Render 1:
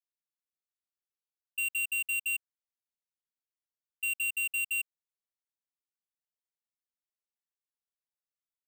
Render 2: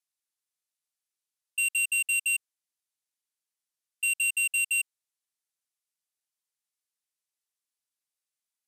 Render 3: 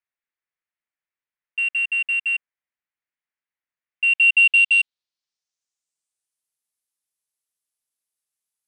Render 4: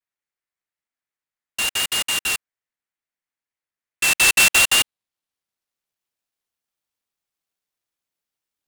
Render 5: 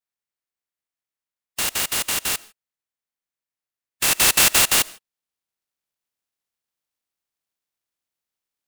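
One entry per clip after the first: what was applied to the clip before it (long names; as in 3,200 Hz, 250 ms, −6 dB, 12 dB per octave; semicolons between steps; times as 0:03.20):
low-pass filter 12,000 Hz 24 dB per octave; spectral tilt +3 dB per octave
leveller curve on the samples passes 2; low-pass filter sweep 2,000 Hz → 11,000 Hz, 0:03.85–0:06.46; level +3.5 dB
pitch vibrato 0.65 Hz 50 cents; short delay modulated by noise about 5,300 Hz, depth 0.048 ms
compressing power law on the bin magnitudes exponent 0.46; on a send at −22.5 dB: convolution reverb, pre-delay 40 ms; on the sum: level −1 dB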